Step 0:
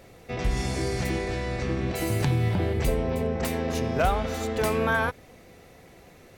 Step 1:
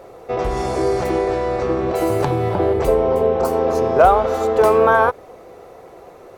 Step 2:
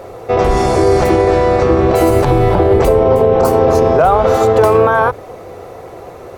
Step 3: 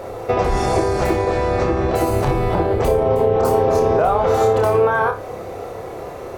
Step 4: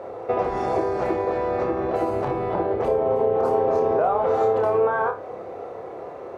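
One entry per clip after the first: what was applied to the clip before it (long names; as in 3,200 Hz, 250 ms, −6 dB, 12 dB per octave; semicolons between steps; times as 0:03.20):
healed spectral selection 0:03.03–0:03.81, 1,600–4,000 Hz; flat-topped bell 680 Hz +13.5 dB 2.3 octaves
sub-octave generator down 2 octaves, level −4 dB; boost into a limiter +10 dB; level −1 dB
downward compressor, threshold −14 dBFS, peak gain reduction 8 dB; on a send: flutter between parallel walls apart 5 metres, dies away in 0.29 s
resonant band-pass 620 Hz, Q 0.51; level −4 dB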